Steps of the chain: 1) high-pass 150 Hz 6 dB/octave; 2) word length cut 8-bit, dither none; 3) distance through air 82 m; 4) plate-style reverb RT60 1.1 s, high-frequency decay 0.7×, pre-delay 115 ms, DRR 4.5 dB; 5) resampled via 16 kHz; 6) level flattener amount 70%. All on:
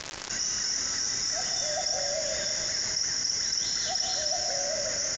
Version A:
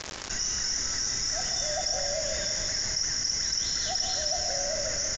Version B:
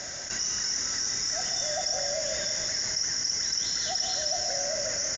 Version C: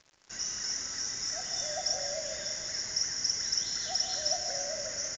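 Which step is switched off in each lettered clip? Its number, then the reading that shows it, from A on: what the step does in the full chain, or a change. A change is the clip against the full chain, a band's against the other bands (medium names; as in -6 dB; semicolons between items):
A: 1, 125 Hz band +5.0 dB; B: 2, distortion -22 dB; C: 6, crest factor change +4.0 dB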